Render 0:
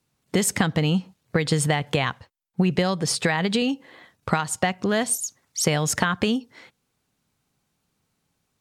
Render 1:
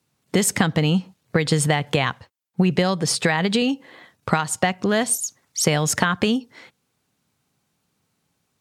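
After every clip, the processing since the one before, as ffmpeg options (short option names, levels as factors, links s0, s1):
-af "highpass=75,volume=1.33"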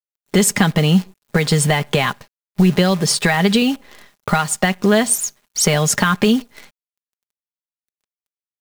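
-af "acrusher=bits=7:dc=4:mix=0:aa=0.000001,aecho=1:1:4.9:0.44,apsyclip=3.16,volume=0.501"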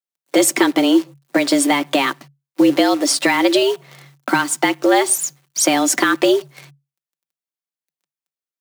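-af "afreqshift=140"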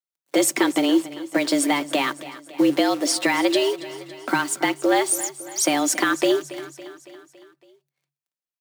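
-af "aecho=1:1:279|558|837|1116|1395:0.158|0.0903|0.0515|0.0294|0.0167,volume=0.562"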